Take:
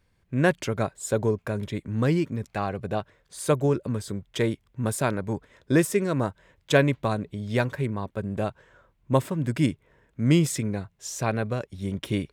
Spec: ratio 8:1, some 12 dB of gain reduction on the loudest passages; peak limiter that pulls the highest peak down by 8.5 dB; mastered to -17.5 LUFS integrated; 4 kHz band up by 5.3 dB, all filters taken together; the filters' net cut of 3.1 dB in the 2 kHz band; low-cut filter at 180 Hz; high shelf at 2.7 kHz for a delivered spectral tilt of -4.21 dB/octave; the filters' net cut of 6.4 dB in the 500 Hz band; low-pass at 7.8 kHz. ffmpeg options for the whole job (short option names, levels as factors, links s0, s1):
-af "highpass=180,lowpass=7800,equalizer=f=500:t=o:g=-8,equalizer=f=2000:t=o:g=-7,highshelf=f=2700:g=5.5,equalizer=f=4000:t=o:g=5,acompressor=threshold=0.0282:ratio=8,volume=11.2,alimiter=limit=0.562:level=0:latency=1"